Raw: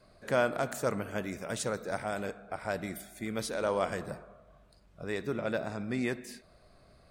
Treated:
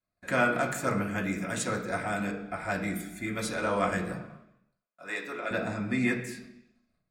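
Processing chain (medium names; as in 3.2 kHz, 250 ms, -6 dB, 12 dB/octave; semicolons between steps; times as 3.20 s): gate -55 dBFS, range -31 dB; 4.16–5.51 s: high-pass 530 Hz 12 dB/octave; reverberation RT60 0.70 s, pre-delay 3 ms, DRR -1 dB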